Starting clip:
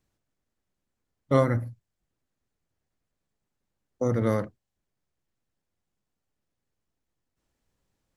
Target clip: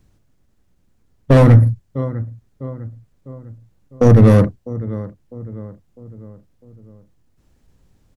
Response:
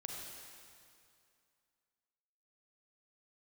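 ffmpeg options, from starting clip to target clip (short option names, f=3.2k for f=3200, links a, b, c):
-filter_complex "[0:a]asetrate=42845,aresample=44100,atempo=1.0293,asplit=2[a][b];[b]adelay=652,lowpass=f=1.7k:p=1,volume=-19.5dB,asplit=2[c][d];[d]adelay=652,lowpass=f=1.7k:p=1,volume=0.48,asplit=2[e][f];[f]adelay=652,lowpass=f=1.7k:p=1,volume=0.48,asplit=2[g][h];[h]adelay=652,lowpass=f=1.7k:p=1,volume=0.48[i];[a][c][e][g][i]amix=inputs=5:normalize=0,asoftclip=type=hard:threshold=-23.5dB,lowshelf=f=300:g=12,alimiter=level_in=13dB:limit=-1dB:release=50:level=0:latency=1,volume=-1dB"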